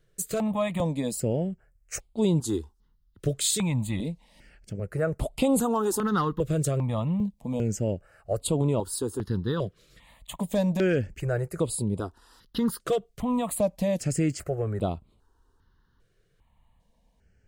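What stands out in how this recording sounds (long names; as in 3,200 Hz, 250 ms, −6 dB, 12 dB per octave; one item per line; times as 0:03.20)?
notches that jump at a steady rate 2.5 Hz 240–5,900 Hz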